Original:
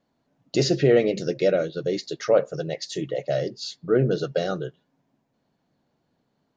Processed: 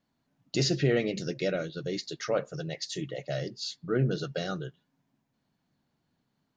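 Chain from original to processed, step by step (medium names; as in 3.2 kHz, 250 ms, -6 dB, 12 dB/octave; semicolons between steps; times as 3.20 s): peaking EQ 520 Hz -8.5 dB 1.5 oct; trim -2 dB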